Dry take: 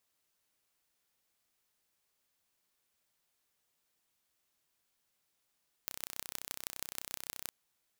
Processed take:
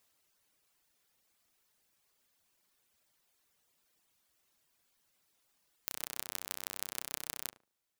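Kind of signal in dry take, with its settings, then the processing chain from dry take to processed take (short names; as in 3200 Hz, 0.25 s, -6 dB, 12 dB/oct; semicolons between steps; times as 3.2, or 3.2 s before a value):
pulse train 31.7/s, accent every 5, -9 dBFS 1.63 s
reverb removal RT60 0.99 s; in parallel at +1 dB: limiter -21 dBFS; on the sum: tape echo 72 ms, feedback 25%, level -8.5 dB, low-pass 1100 Hz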